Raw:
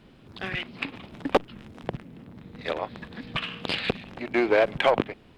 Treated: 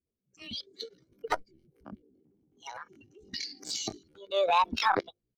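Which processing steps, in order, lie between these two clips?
per-bin expansion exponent 2; spectral noise reduction 8 dB; transient shaper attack -5 dB, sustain +8 dB; pitch shift +8.5 st

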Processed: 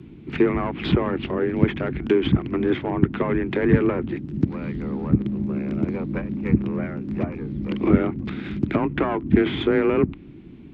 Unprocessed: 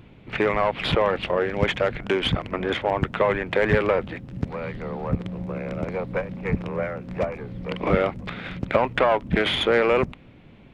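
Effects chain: treble ducked by the level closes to 2300 Hz, closed at -19 dBFS; resonant low shelf 410 Hz +8 dB, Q 3; frequency shift +24 Hz; gain -3.5 dB

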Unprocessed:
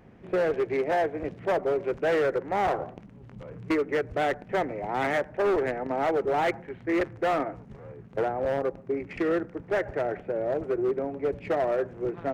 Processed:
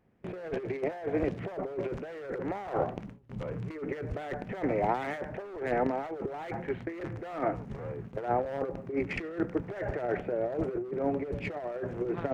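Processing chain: gate with hold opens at -38 dBFS; negative-ratio compressor -31 dBFS, ratio -0.5

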